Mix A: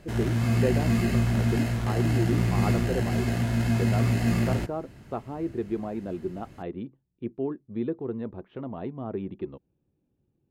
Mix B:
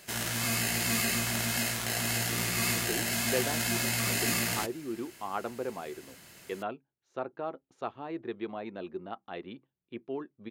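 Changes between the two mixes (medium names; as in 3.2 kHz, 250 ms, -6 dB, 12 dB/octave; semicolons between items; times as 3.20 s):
speech: entry +2.70 s; master: add tilt EQ +4.5 dB/octave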